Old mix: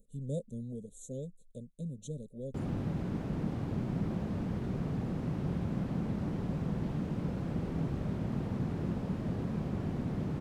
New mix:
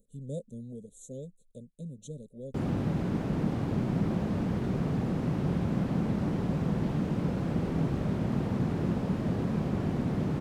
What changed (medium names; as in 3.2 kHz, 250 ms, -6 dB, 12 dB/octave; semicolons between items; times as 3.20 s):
background +6.5 dB; master: add bass shelf 95 Hz -6 dB